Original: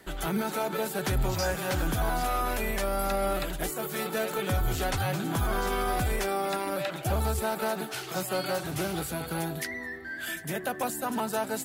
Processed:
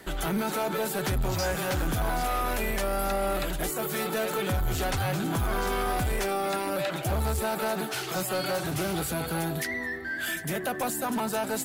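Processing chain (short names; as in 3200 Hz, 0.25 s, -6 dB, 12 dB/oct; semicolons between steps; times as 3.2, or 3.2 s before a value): in parallel at -1.5 dB: limiter -26.5 dBFS, peak gain reduction 7.5 dB; on the sum: soft clip -22 dBFS, distortion -16 dB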